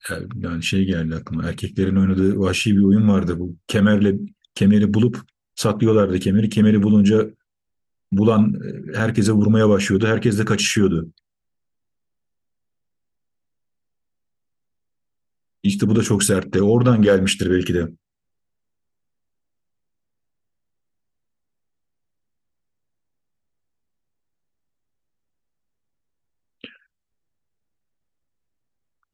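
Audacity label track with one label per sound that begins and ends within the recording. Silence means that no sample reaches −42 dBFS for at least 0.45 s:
8.120000	11.180000	sound
15.640000	17.940000	sound
26.640000	26.760000	sound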